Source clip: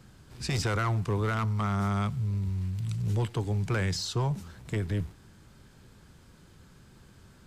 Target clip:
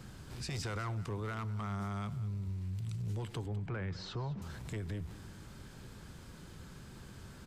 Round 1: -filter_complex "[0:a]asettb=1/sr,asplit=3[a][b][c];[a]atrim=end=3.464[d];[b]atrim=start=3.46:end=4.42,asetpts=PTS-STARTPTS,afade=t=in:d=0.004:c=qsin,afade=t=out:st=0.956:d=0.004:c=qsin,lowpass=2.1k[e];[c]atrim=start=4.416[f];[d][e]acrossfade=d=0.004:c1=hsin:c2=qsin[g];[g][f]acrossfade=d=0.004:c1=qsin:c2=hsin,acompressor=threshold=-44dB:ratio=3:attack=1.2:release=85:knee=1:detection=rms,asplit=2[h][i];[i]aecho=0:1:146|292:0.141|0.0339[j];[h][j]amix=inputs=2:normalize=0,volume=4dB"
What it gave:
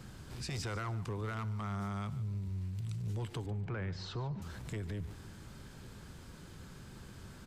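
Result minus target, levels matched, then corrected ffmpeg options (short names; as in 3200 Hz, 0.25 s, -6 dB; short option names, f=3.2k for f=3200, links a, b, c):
echo 57 ms early
-filter_complex "[0:a]asettb=1/sr,asplit=3[a][b][c];[a]atrim=end=3.464[d];[b]atrim=start=3.46:end=4.42,asetpts=PTS-STARTPTS,afade=t=in:d=0.004:c=qsin,afade=t=out:st=0.956:d=0.004:c=qsin,lowpass=2.1k[e];[c]atrim=start=4.416[f];[d][e]acrossfade=d=0.004:c1=hsin:c2=qsin[g];[g][f]acrossfade=d=0.004:c1=qsin:c2=hsin,acompressor=threshold=-44dB:ratio=3:attack=1.2:release=85:knee=1:detection=rms,asplit=2[h][i];[i]aecho=0:1:203|406:0.141|0.0339[j];[h][j]amix=inputs=2:normalize=0,volume=4dB"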